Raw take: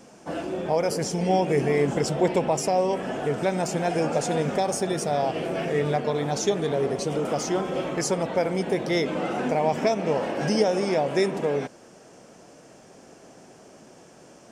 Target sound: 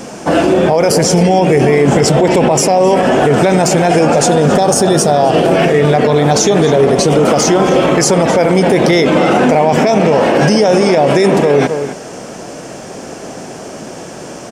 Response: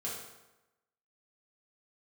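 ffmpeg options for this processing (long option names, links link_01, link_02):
-filter_complex "[0:a]asettb=1/sr,asplit=3[link_01][link_02][link_03];[link_01]atrim=end=4.224[link_04];[link_02]atrim=start=4.22:end=5.51,asetpts=PTS-STARTPTS,afade=type=in:duration=0.004:curve=qsin,afade=type=out:start_time=1.286:duration=0.004:curve=qsin,equalizer=frequency=2200:width=3.7:gain=-8.5[link_05];[link_03]atrim=start=5.506[link_06];[link_04][link_05]acrossfade=duration=0.004:curve1=hsin:curve2=qsin[link_07];[link_07][link_06]acrossfade=duration=0.004:curve1=qsin:curve2=hsin,asplit=2[link_08][link_09];[link_09]adelay=262.4,volume=-14dB,highshelf=frequency=4000:gain=-5.9[link_10];[link_08][link_10]amix=inputs=2:normalize=0,alimiter=level_in=22.5dB:limit=-1dB:release=50:level=0:latency=1,volume=-1dB"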